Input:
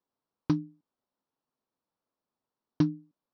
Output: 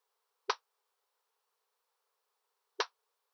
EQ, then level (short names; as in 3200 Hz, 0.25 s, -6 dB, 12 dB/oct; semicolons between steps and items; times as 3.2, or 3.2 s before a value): brick-wall FIR high-pass 390 Hz; bell 620 Hz -10 dB 0.48 oct; +9.5 dB